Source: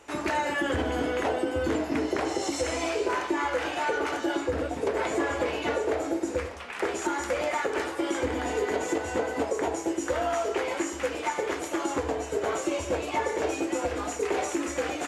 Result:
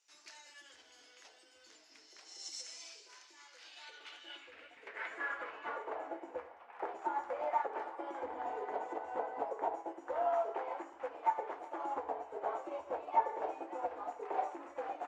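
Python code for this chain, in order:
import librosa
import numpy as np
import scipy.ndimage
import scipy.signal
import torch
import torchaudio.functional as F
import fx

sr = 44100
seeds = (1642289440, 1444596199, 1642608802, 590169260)

y = fx.filter_sweep_bandpass(x, sr, from_hz=5300.0, to_hz=820.0, start_s=3.46, end_s=6.18, q=2.9)
y = fx.echo_banded(y, sr, ms=382, feedback_pct=71, hz=2200.0, wet_db=-15)
y = fx.upward_expand(y, sr, threshold_db=-50.0, expansion=1.5)
y = y * librosa.db_to_amplitude(2.0)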